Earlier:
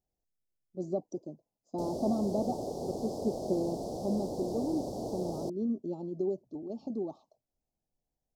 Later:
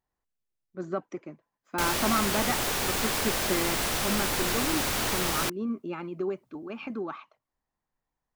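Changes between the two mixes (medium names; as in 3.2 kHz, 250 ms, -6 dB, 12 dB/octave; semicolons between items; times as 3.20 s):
background: remove band-pass filter 410 Hz, Q 0.58; master: remove elliptic band-stop 700–4900 Hz, stop band 80 dB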